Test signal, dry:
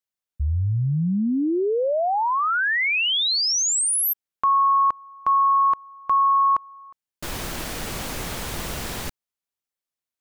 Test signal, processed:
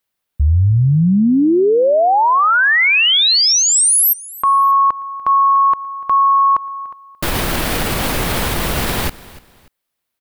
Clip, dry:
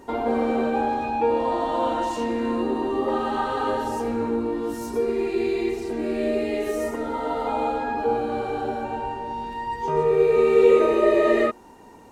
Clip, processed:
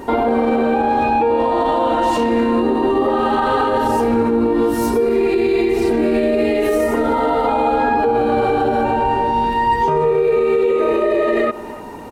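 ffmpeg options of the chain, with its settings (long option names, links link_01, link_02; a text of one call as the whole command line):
ffmpeg -i in.wav -filter_complex "[0:a]equalizer=frequency=6600:width=1.4:gain=-6.5,acompressor=threshold=-24dB:ratio=6:attack=47:release=198:knee=1:detection=rms,asplit=2[link_01][link_02];[link_02]aecho=0:1:292|584:0.0794|0.0238[link_03];[link_01][link_03]amix=inputs=2:normalize=0,alimiter=level_in=22dB:limit=-1dB:release=50:level=0:latency=1,volume=-7.5dB" out.wav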